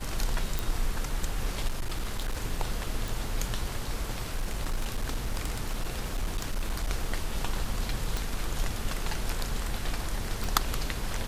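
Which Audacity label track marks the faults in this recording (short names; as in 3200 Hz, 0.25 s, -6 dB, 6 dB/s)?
0.590000	0.590000	pop
1.670000	2.380000	clipped -26 dBFS
3.080000	3.080000	pop
4.370000	6.880000	clipped -25 dBFS
8.170000	8.170000	pop
10.440000	10.440000	pop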